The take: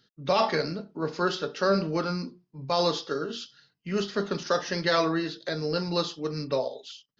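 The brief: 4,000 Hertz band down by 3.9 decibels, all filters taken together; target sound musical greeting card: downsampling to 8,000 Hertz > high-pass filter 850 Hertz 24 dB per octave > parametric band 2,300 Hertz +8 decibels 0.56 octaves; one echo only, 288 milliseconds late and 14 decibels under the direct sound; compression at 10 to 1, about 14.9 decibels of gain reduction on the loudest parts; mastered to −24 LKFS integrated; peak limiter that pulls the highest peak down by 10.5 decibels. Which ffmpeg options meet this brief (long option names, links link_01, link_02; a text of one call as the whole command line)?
ffmpeg -i in.wav -af "equalizer=frequency=4000:width_type=o:gain=-6,acompressor=threshold=-35dB:ratio=10,alimiter=level_in=9dB:limit=-24dB:level=0:latency=1,volume=-9dB,aecho=1:1:288:0.2,aresample=8000,aresample=44100,highpass=frequency=850:width=0.5412,highpass=frequency=850:width=1.3066,equalizer=frequency=2300:width_type=o:width=0.56:gain=8,volume=24.5dB" out.wav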